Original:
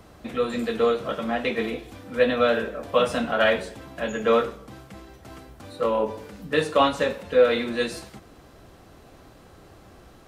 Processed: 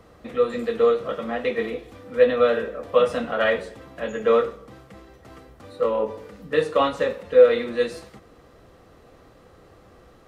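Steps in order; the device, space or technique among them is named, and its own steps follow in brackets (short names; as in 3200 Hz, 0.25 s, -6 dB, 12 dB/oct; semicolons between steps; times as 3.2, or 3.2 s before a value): inside a helmet (high shelf 5800 Hz -5 dB; small resonant body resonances 490/1200/1900 Hz, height 8 dB, ringing for 35 ms); gain -3 dB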